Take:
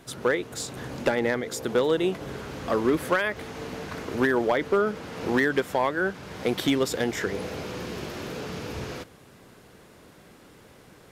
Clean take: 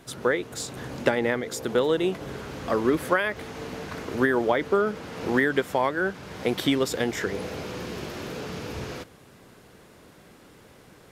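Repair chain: clip repair -14.5 dBFS

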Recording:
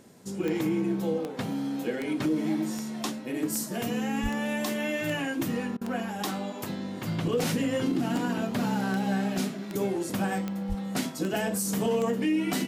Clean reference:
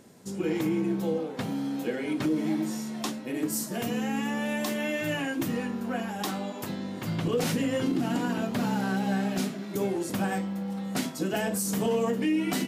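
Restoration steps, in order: de-click; 4.22–4.34 HPF 140 Hz 24 dB/oct; 10.68–10.8 HPF 140 Hz 24 dB/oct; interpolate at 5.77, 42 ms

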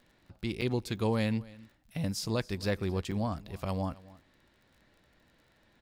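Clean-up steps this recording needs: de-click; interpolate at 0.61/3.11, 6.7 ms; inverse comb 0.27 s -21 dB

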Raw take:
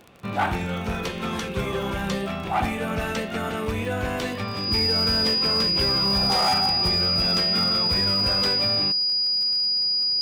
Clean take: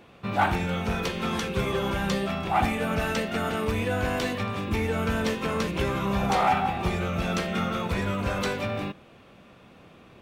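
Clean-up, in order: clip repair -16 dBFS; de-click; notch 4900 Hz, Q 30

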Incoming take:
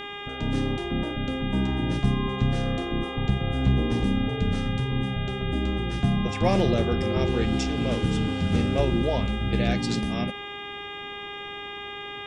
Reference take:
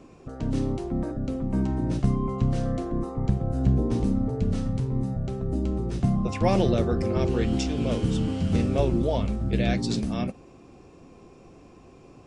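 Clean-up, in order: clip repair -12 dBFS; de-hum 406.5 Hz, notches 9

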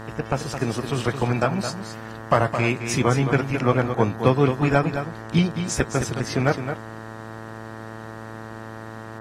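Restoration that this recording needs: clip repair -4 dBFS; de-hum 111.1 Hz, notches 17; inverse comb 0.216 s -8.5 dB

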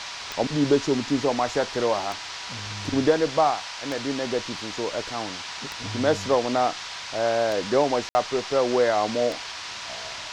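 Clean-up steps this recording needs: de-click; notch 970 Hz, Q 30; room tone fill 8.09–8.15; noise print and reduce 30 dB

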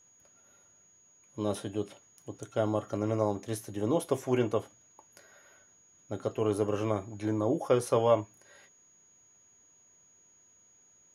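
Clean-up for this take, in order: notch 6700 Hz, Q 30

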